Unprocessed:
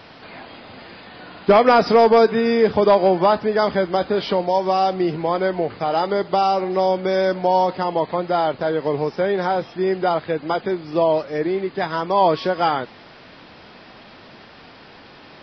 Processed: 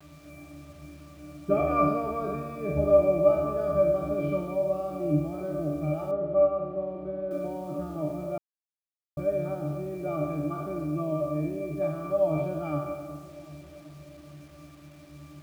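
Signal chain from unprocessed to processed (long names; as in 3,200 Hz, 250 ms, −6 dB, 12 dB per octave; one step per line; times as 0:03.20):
peak hold with a decay on every bin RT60 1.48 s
low-shelf EQ 420 Hz +6 dB
notch filter 1,000 Hz, Q 17
resonances in every octave D, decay 0.38 s
bit reduction 10 bits
0:06.11–0:07.31: high-frequency loss of the air 490 metres
delay with a low-pass on its return 385 ms, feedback 63%, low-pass 630 Hz, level −14 dB
0:08.38–0:09.17: silence
level +3.5 dB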